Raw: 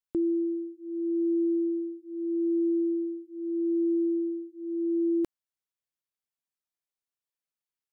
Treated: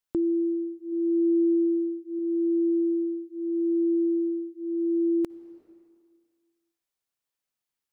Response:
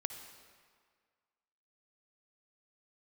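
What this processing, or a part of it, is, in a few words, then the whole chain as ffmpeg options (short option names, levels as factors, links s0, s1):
ducked reverb: -filter_complex "[0:a]asettb=1/sr,asplit=3[s0][s1][s2];[s0]atrim=end=0.924[s3];[s1]atrim=start=0.92:end=2.19,asetpts=PTS-STARTPTS,afade=t=in:d=0.004:c=qsin,afade=t=out:st=1.266:d=0.004:c=qsin,equalizer=f=310:w=3.4:g=3[s4];[s2]atrim=start=2.186[s5];[s3][s4]acrossfade=d=0.004:c1=hsin:c2=qsin[s6];[s6][s5]acrossfade=d=0.004:c1=qsin:c2=hsin,asplit=3[s7][s8][s9];[1:a]atrim=start_sample=2205[s10];[s8][s10]afir=irnorm=-1:irlink=0[s11];[s9]apad=whole_len=349493[s12];[s11][s12]sidechaincompress=threshold=0.0158:ratio=8:attack=16:release=502,volume=0.841[s13];[s7][s13]amix=inputs=2:normalize=0"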